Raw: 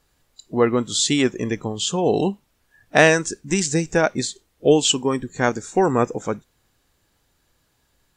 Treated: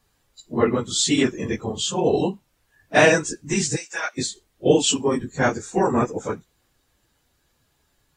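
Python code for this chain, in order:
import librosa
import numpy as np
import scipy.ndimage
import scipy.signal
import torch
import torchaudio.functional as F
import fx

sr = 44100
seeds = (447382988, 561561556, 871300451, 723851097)

y = fx.phase_scramble(x, sr, seeds[0], window_ms=50)
y = fx.highpass(y, sr, hz=1300.0, slope=12, at=(3.75, 4.17), fade=0.02)
y = y * 10.0 ** (-1.0 / 20.0)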